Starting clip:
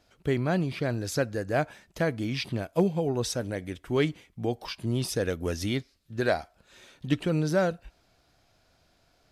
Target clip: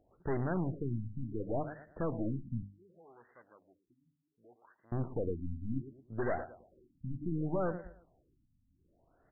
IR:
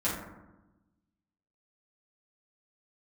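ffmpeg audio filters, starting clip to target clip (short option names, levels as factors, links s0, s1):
-filter_complex "[0:a]equalizer=f=340:t=o:w=0.77:g=3.5,aecho=1:1:112|224|336:0.126|0.0415|0.0137,aeval=exprs='(tanh(31.6*val(0)+0.65)-tanh(0.65))/31.6':c=same,asettb=1/sr,asplit=3[s0][s1][s2];[s0]atrim=end=2.624[s3];[s1]atrim=start=2.62:end=4.92,asetpts=PTS-STARTPTS,afade=t=in:d=0.004:c=qsin,afade=t=out:st=2.296:d=0.004:c=qsin,aderivative[s4];[s2]atrim=start=4.916[s5];[s3][s4]acrossfade=d=0.004:c1=hsin:c2=qsin[s6];[s6][s5]acrossfade=d=0.004:c1=qsin:c2=hsin,bandreject=f=50:t=h:w=6,bandreject=f=100:t=h:w=6,bandreject=f=150:t=h:w=6,bandreject=f=200:t=h:w=6,bandreject=f=250:t=h:w=6,bandreject=f=300:t=h:w=6,afftfilt=real='re*lt(b*sr/1024,260*pow(2100/260,0.5+0.5*sin(2*PI*0.67*pts/sr)))':imag='im*lt(b*sr/1024,260*pow(2100/260,0.5+0.5*sin(2*PI*0.67*pts/sr)))':win_size=1024:overlap=0.75"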